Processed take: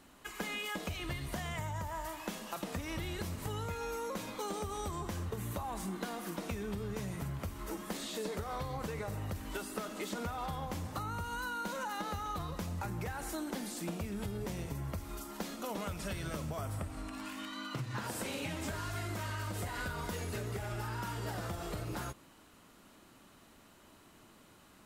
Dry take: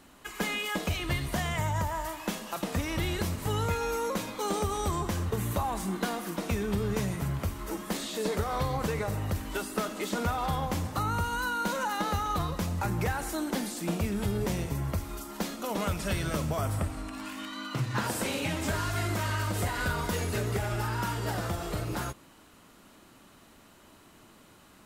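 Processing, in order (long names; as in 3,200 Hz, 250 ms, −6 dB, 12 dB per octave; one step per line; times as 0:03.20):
downward compressor, threshold −31 dBFS, peak gain reduction 7 dB
level −4 dB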